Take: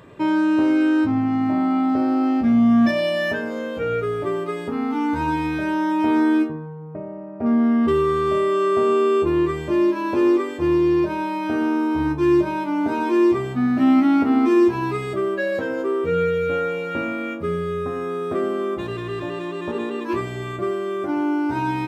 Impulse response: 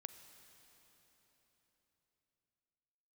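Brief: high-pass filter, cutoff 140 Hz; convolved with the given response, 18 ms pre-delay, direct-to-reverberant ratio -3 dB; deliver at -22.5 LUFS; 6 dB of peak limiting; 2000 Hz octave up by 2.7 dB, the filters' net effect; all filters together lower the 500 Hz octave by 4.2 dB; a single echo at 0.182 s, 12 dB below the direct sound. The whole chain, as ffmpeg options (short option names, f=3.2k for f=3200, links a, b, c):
-filter_complex "[0:a]highpass=140,equalizer=f=500:t=o:g=-6.5,equalizer=f=2k:t=o:g=4,alimiter=limit=-15.5dB:level=0:latency=1,aecho=1:1:182:0.251,asplit=2[a][b];[1:a]atrim=start_sample=2205,adelay=18[c];[b][c]afir=irnorm=-1:irlink=0,volume=8dB[d];[a][d]amix=inputs=2:normalize=0,volume=-3dB"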